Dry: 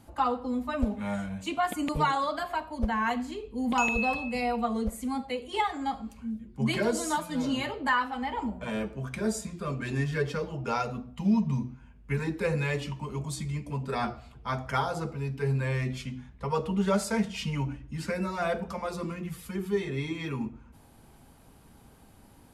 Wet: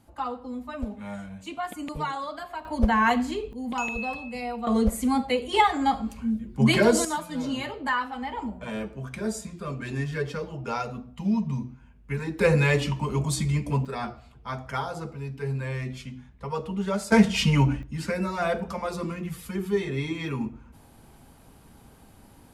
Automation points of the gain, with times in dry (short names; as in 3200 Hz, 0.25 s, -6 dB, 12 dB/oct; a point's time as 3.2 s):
-4.5 dB
from 2.65 s +7 dB
from 3.53 s -3.5 dB
from 4.67 s +8 dB
from 7.05 s -0.5 dB
from 12.39 s +8 dB
from 13.85 s -2 dB
from 17.12 s +10.5 dB
from 17.83 s +3 dB